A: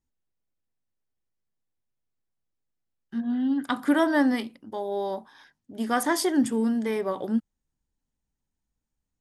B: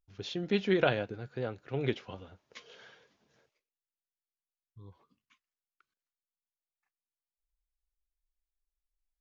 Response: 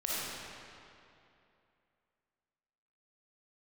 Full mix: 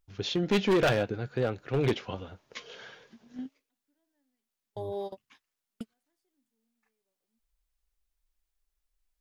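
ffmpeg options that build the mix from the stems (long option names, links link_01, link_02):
-filter_complex "[0:a]equalizer=frequency=1200:width=2.6:gain=-15,volume=-5dB[link_01];[1:a]acontrast=22,volume=2.5dB,asplit=2[link_02][link_03];[link_03]apad=whole_len=406041[link_04];[link_01][link_04]sidechaingate=range=-52dB:threshold=-60dB:ratio=16:detection=peak[link_05];[link_05][link_02]amix=inputs=2:normalize=0,asoftclip=type=hard:threshold=-20dB"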